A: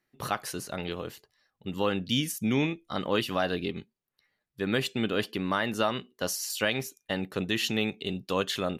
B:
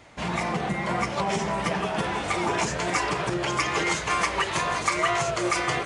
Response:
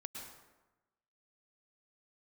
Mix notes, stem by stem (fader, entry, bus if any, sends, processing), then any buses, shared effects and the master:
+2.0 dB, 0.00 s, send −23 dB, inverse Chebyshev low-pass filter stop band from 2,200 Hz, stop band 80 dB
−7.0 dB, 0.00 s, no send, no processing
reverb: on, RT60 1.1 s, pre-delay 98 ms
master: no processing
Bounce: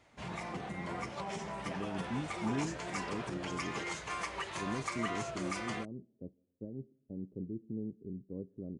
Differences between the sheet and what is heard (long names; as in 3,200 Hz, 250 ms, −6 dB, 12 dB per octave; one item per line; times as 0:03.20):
stem A +2.0 dB → −8.5 dB
stem B −7.0 dB → −14.0 dB